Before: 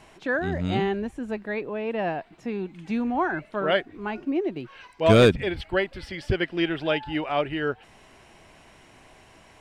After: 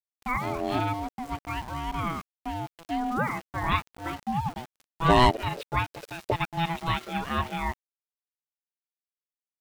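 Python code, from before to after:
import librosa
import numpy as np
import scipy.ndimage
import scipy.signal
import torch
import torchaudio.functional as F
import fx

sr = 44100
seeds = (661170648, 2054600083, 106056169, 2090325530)

y = np.where(np.abs(x) >= 10.0 ** (-36.5 / 20.0), x, 0.0)
y = y * np.sin(2.0 * np.pi * 500.0 * np.arange(len(y)) / sr)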